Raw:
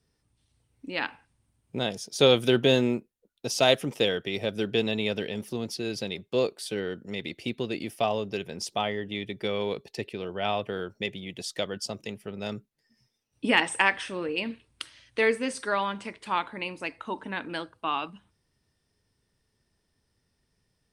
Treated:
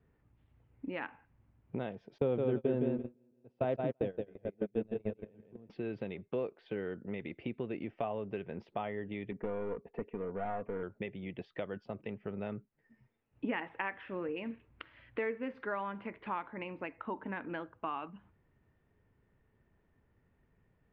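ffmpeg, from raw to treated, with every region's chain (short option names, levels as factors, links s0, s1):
-filter_complex "[0:a]asettb=1/sr,asplit=3[s0][s1][s2];[s0]atrim=end=2.184[s3];[s1]atrim=start=2.18:end=5.7,asetpts=PTS-STARTPTS,afade=t=in:d=0.004:c=qsin,afade=t=out:st=3.516:d=0.004:c=qsin,aecho=1:1:168|336|504|672|840:0.668|0.234|0.0819|0.0287|0.01,atrim=end_sample=155232,agate=range=0.0224:threshold=0.0562:ratio=16:release=100:detection=peak,tiltshelf=f=890:g=7[s4];[s2]atrim=start=5.696[s5];[s3][s4]acrossfade=d=0.004:c1=hsin:c2=qsin[s6];[s6][s5]acrossfade=d=0.004:c1=qsin:c2=hsin,asettb=1/sr,asplit=3[s7][s8][s9];[s7]atrim=end=9.314[s10];[s8]atrim=start=9.31:end=10.83,asetpts=PTS-STARTPTS,afade=t=in:d=0.004:c=qsin,afade=t=out:st=1.516:d=0.004:c=qsin,lowpass=1500,aeval=exprs='clip(val(0),-1,0.02)':c=same,aecho=1:1:4.2:0.54,atrim=end_sample=67032[s11];[s9]atrim=start=10.826[s12];[s10][s11]acrossfade=d=0.004:c1=hsin:c2=qsin[s13];[s13][s12]acrossfade=d=0.004:c1=qsin:c2=hsin,acompressor=threshold=0.00708:ratio=2.5,lowpass=f=2500:w=0.5412,lowpass=f=2500:w=1.3066,aemphasis=mode=reproduction:type=75kf,volume=1.58"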